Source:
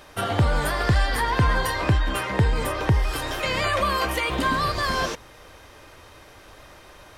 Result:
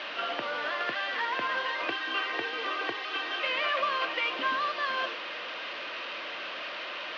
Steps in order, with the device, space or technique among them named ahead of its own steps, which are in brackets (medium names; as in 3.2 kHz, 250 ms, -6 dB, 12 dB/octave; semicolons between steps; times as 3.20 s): digital answering machine (band-pass 320–3400 Hz; one-bit delta coder 32 kbps, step -27 dBFS; cabinet simulation 370–4100 Hz, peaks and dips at 420 Hz -7 dB, 830 Hz -8 dB, 2.8 kHz +7 dB); 1.88–3.43 s: comb 2.6 ms, depth 66%; trim -4 dB